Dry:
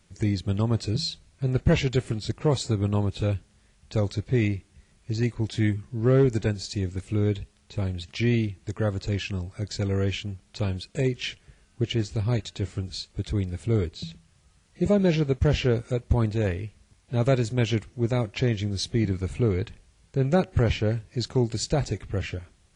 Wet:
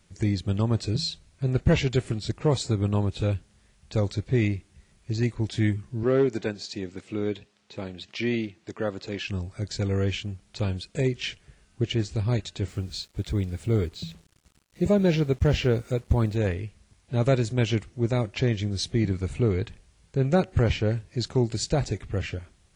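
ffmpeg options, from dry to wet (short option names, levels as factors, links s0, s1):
-filter_complex "[0:a]asettb=1/sr,asplit=3[s0][s1][s2];[s0]atrim=end=6.034[s3];[s1]atrim=start=6.03:end=9.28,asetpts=PTS-STARTPTS,afade=t=in:d=0.004:c=qsin,afade=t=out:st=3.246:d=0.004:c=qsin,highpass=220,lowpass=5900[s4];[s2]atrim=start=9.276[s5];[s3][s4]acrossfade=d=0.004:c1=hsin:c2=qsin[s6];[s6][s5]acrossfade=d=0.004:c1=qsin:c2=hsin,asettb=1/sr,asplit=3[s7][s8][s9];[s7]atrim=end=12.684[s10];[s8]atrim=start=12.68:end=16.36,asetpts=PTS-STARTPTS,afade=t=in:d=0.004:c=qsin,afade=t=out:st=3.676:d=0.004:c=qsin,acrusher=bits=8:mix=0:aa=0.5[s11];[s9]atrim=start=16.356[s12];[s10][s11]acrossfade=d=0.004:c1=hsin:c2=qsin[s13];[s13][s12]acrossfade=d=0.004:c1=qsin:c2=hsin"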